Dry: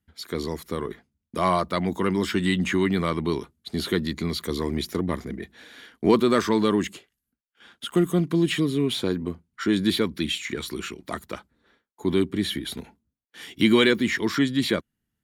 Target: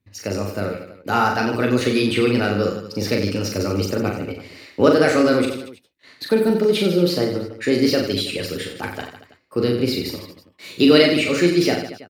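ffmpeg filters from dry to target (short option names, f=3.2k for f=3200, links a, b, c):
-filter_complex "[0:a]equalizer=f=99:w=1.9:g=6,asplit=2[a][b];[b]adelay=14,volume=-11dB[c];[a][c]amix=inputs=2:normalize=0,asetrate=55566,aresample=44100,highshelf=f=7.3k:g=-5,aecho=1:1:40|90|152.5|230.6|328.3:0.631|0.398|0.251|0.158|0.1,volume=2.5dB"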